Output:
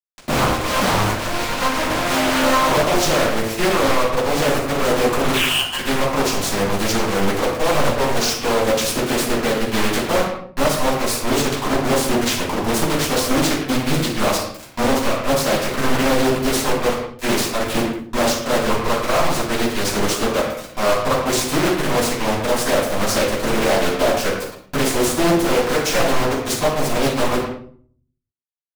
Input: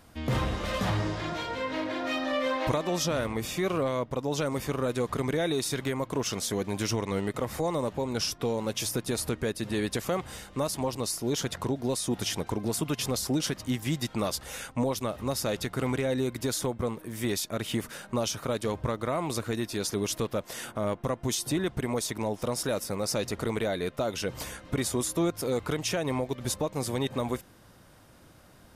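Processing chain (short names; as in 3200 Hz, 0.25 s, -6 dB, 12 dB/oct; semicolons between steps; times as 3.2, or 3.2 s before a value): bell 73 Hz -11.5 dB 2.7 oct; 5.33–5.78 inverted band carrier 3300 Hz; 14.05–14.96 de-hum 64.55 Hz, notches 15; bit-crush 5-bit; shoebox room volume 550 m³, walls furnished, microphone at 8.8 m; wavefolder -9.5 dBFS; speakerphone echo 0.11 s, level -6 dB; Doppler distortion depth 0.72 ms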